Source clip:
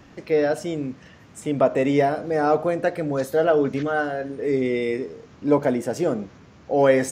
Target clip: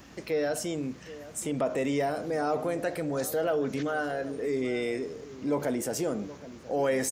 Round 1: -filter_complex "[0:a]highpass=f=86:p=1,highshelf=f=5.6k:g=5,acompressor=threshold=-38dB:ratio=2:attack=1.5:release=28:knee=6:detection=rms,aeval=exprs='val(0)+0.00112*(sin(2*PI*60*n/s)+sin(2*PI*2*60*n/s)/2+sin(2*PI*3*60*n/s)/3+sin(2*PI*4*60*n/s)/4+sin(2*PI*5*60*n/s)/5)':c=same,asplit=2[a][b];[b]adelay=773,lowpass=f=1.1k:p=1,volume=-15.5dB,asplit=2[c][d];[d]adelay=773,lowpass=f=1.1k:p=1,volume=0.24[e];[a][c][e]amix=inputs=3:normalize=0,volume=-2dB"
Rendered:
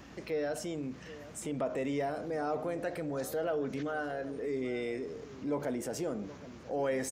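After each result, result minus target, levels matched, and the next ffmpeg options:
compressor: peak gain reduction +5 dB; 8000 Hz band -3.0 dB
-filter_complex "[0:a]highpass=f=86:p=1,highshelf=f=5.6k:g=5,acompressor=threshold=-27.5dB:ratio=2:attack=1.5:release=28:knee=6:detection=rms,aeval=exprs='val(0)+0.00112*(sin(2*PI*60*n/s)+sin(2*PI*2*60*n/s)/2+sin(2*PI*3*60*n/s)/3+sin(2*PI*4*60*n/s)/4+sin(2*PI*5*60*n/s)/5)':c=same,asplit=2[a][b];[b]adelay=773,lowpass=f=1.1k:p=1,volume=-15.5dB,asplit=2[c][d];[d]adelay=773,lowpass=f=1.1k:p=1,volume=0.24[e];[a][c][e]amix=inputs=3:normalize=0,volume=-2dB"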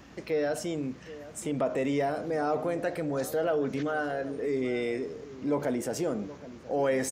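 8000 Hz band -4.0 dB
-filter_complex "[0:a]highpass=f=86:p=1,highshelf=f=5.6k:g=13.5,acompressor=threshold=-27.5dB:ratio=2:attack=1.5:release=28:knee=6:detection=rms,aeval=exprs='val(0)+0.00112*(sin(2*PI*60*n/s)+sin(2*PI*2*60*n/s)/2+sin(2*PI*3*60*n/s)/3+sin(2*PI*4*60*n/s)/4+sin(2*PI*5*60*n/s)/5)':c=same,asplit=2[a][b];[b]adelay=773,lowpass=f=1.1k:p=1,volume=-15.5dB,asplit=2[c][d];[d]adelay=773,lowpass=f=1.1k:p=1,volume=0.24[e];[a][c][e]amix=inputs=3:normalize=0,volume=-2dB"

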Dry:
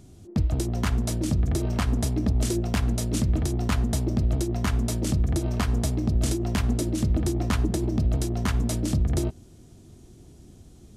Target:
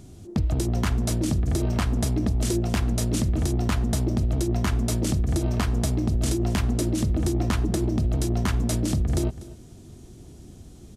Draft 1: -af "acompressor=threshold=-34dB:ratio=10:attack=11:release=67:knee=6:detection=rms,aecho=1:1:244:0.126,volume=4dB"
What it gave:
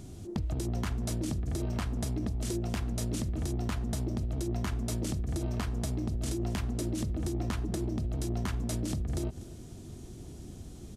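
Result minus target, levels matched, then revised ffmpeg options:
compressor: peak gain reduction +10 dB
-af "acompressor=threshold=-23dB:ratio=10:attack=11:release=67:knee=6:detection=rms,aecho=1:1:244:0.126,volume=4dB"

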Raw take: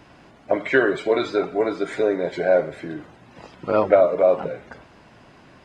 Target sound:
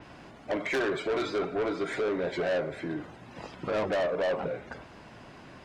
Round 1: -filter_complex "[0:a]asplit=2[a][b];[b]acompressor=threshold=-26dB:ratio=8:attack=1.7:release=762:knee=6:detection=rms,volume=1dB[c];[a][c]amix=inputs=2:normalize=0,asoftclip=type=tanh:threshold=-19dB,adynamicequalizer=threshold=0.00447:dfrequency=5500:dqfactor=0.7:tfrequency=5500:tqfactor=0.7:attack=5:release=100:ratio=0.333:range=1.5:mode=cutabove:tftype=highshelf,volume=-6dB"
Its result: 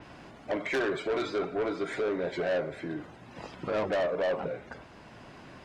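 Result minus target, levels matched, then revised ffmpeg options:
compressor: peak gain reduction +7.5 dB
-filter_complex "[0:a]asplit=2[a][b];[b]acompressor=threshold=-17.5dB:ratio=8:attack=1.7:release=762:knee=6:detection=rms,volume=1dB[c];[a][c]amix=inputs=2:normalize=0,asoftclip=type=tanh:threshold=-19dB,adynamicequalizer=threshold=0.00447:dfrequency=5500:dqfactor=0.7:tfrequency=5500:tqfactor=0.7:attack=5:release=100:ratio=0.333:range=1.5:mode=cutabove:tftype=highshelf,volume=-6dB"

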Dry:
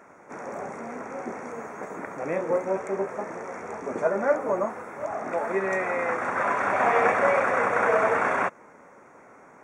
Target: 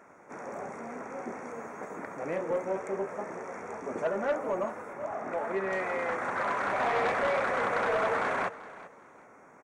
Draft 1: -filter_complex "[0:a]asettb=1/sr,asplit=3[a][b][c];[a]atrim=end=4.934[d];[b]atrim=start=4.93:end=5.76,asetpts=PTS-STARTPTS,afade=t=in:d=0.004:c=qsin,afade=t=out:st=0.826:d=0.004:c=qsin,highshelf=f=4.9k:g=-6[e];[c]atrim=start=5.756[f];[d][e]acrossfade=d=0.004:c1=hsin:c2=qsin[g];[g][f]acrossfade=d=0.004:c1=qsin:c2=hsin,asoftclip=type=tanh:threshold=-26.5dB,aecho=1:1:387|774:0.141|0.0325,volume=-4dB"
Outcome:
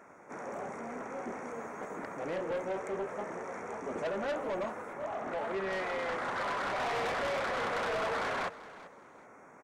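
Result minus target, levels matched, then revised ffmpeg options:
soft clip: distortion +8 dB
-filter_complex "[0:a]asettb=1/sr,asplit=3[a][b][c];[a]atrim=end=4.934[d];[b]atrim=start=4.93:end=5.76,asetpts=PTS-STARTPTS,afade=t=in:d=0.004:c=qsin,afade=t=out:st=0.826:d=0.004:c=qsin,highshelf=f=4.9k:g=-6[e];[c]atrim=start=5.756[f];[d][e]acrossfade=d=0.004:c1=hsin:c2=qsin[g];[g][f]acrossfade=d=0.004:c1=qsin:c2=hsin,asoftclip=type=tanh:threshold=-17.5dB,aecho=1:1:387|774:0.141|0.0325,volume=-4dB"

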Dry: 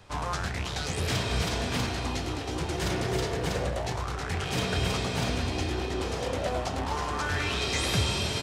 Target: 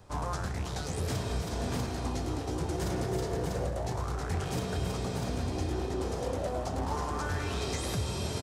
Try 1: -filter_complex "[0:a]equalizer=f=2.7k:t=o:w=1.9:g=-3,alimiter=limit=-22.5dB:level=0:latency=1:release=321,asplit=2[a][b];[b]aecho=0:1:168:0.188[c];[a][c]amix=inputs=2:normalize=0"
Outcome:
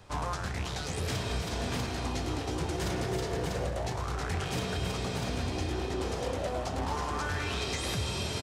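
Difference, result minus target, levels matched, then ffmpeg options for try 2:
2000 Hz band +4.0 dB
-filter_complex "[0:a]equalizer=f=2.7k:t=o:w=1.9:g=-10.5,alimiter=limit=-22.5dB:level=0:latency=1:release=321,asplit=2[a][b];[b]aecho=0:1:168:0.188[c];[a][c]amix=inputs=2:normalize=0"

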